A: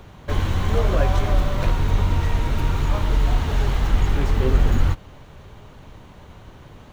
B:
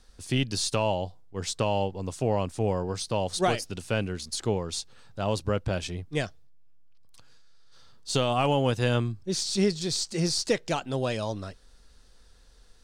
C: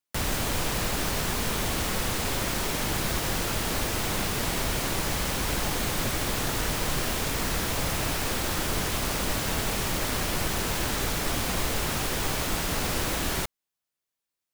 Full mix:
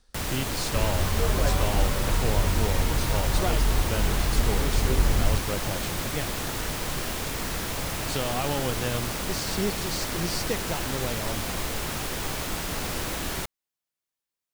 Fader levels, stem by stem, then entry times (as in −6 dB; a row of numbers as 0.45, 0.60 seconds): −5.5, −5.0, −2.5 decibels; 0.45, 0.00, 0.00 seconds